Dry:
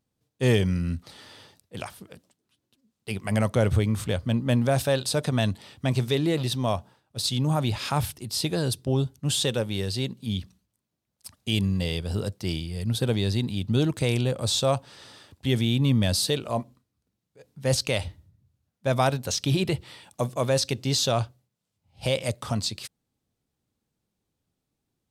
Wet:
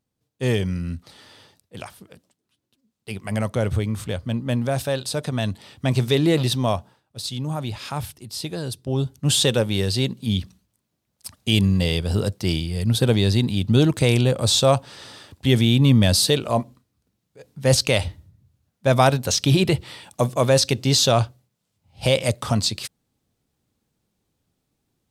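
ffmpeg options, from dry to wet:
-af "volume=16dB,afade=t=in:st=5.4:d=0.97:silence=0.446684,afade=t=out:st=6.37:d=0.84:silence=0.334965,afade=t=in:st=8.82:d=0.48:silence=0.334965"

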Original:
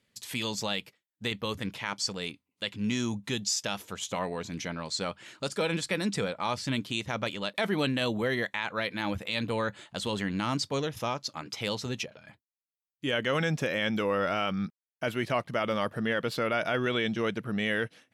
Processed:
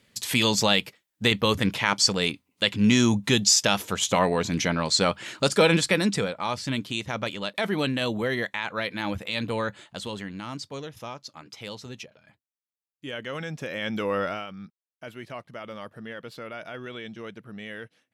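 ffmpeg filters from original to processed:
-af "volume=18.5dB,afade=t=out:st=5.64:d=0.68:silence=0.375837,afade=t=out:st=9.63:d=0.7:silence=0.398107,afade=t=in:st=13.55:d=0.63:silence=0.398107,afade=t=out:st=14.18:d=0.29:silence=0.266073"

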